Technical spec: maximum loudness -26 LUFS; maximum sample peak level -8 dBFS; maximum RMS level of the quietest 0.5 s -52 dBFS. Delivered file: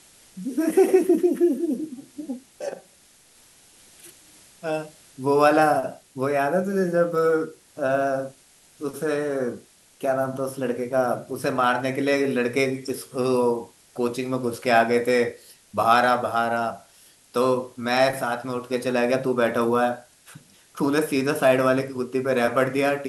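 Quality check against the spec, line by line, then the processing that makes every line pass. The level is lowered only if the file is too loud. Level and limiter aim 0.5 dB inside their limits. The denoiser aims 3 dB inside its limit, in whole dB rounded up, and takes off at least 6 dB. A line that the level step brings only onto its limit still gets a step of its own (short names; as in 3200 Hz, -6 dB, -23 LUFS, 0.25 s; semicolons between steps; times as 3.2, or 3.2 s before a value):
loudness -23.0 LUFS: fail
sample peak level -5.5 dBFS: fail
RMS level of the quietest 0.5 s -55 dBFS: OK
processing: gain -3.5 dB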